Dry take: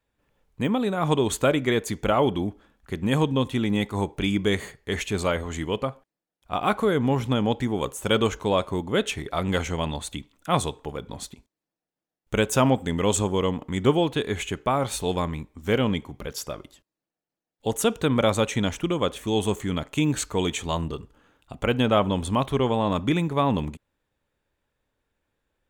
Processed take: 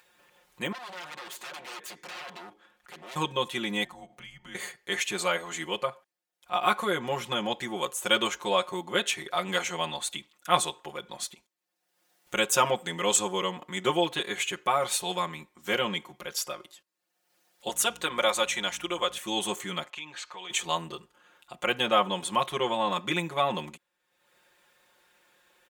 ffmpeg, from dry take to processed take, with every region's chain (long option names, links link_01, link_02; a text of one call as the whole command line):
ffmpeg -i in.wav -filter_complex "[0:a]asettb=1/sr,asplit=3[link_01][link_02][link_03];[link_01]atrim=end=0.724[link_04];[link_02]atrim=start=0.72:end=3.16,asetpts=PTS-STARTPTS,afade=type=in:duration=0.004:curve=qsin,afade=type=out:start_time=2.436:duration=0.004:curve=qsin,acompressor=threshold=-30dB:ratio=3:attack=3.2:release=140:knee=1:detection=peak,aeval=exprs='0.0188*(abs(mod(val(0)/0.0188+3,4)-2)-1)':channel_layout=same,bass=frequency=250:gain=-4,treble=frequency=4000:gain=-5[link_05];[link_03]atrim=start=3.156[link_06];[link_04][link_05]acrossfade=duration=0.004:curve1=hsin:curve2=qsin[link_07];[link_07][link_06]acrossfade=duration=0.004:curve1=qsin:curve2=hsin,asettb=1/sr,asplit=3[link_08][link_09][link_10];[link_08]atrim=end=3.844[link_11];[link_09]atrim=start=3.84:end=4.55,asetpts=PTS-STARTPTS,afade=type=in:duration=0.004:curve=qsin,afade=type=out:start_time=0.706:duration=0.004:curve=qsin,highshelf=frequency=2100:gain=-9,acompressor=threshold=-35dB:ratio=4:attack=3.2:release=140:knee=1:detection=peak,afreqshift=-170[link_12];[link_10]atrim=start=4.546[link_13];[link_11][link_12]acrossfade=duration=0.004:curve1=hsin:curve2=qsin[link_14];[link_14][link_13]acrossfade=duration=0.004:curve1=qsin:curve2=hsin,asettb=1/sr,asplit=3[link_15][link_16][link_17];[link_15]atrim=end=17.694[link_18];[link_16]atrim=start=17.69:end=19.18,asetpts=PTS-STARTPTS,afade=type=in:duration=0.004:curve=qsin,afade=type=out:start_time=1.486:duration=0.004:curve=qsin,highpass=frequency=430:poles=1,aeval=exprs='val(0)+0.0126*(sin(2*PI*60*n/s)+sin(2*PI*2*60*n/s)/2+sin(2*PI*3*60*n/s)/3+sin(2*PI*4*60*n/s)/4+sin(2*PI*5*60*n/s)/5)':channel_layout=same[link_19];[link_17]atrim=start=19.176[link_20];[link_18][link_19]acrossfade=duration=0.004:curve1=hsin:curve2=qsin[link_21];[link_21][link_20]acrossfade=duration=0.004:curve1=qsin:curve2=hsin,asettb=1/sr,asplit=3[link_22][link_23][link_24];[link_22]atrim=end=19.904[link_25];[link_23]atrim=start=19.9:end=20.5,asetpts=PTS-STARTPTS,afade=type=in:duration=0.004:curve=qsin,afade=type=out:start_time=0.596:duration=0.004:curve=qsin,acrossover=split=560 5000:gain=0.251 1 0.0794[link_26][link_27][link_28];[link_26][link_27][link_28]amix=inputs=3:normalize=0,bandreject=frequency=1400:width=18,acompressor=threshold=-39dB:ratio=2.5:attack=3.2:release=140:knee=1:detection=peak[link_29];[link_24]atrim=start=20.496[link_30];[link_25][link_29]acrossfade=duration=0.004:curve1=hsin:curve2=qsin[link_31];[link_31][link_30]acrossfade=duration=0.004:curve1=qsin:curve2=hsin,highpass=frequency=1100:poles=1,aecho=1:1:5.6:0.99,acompressor=mode=upward:threshold=-50dB:ratio=2.5" out.wav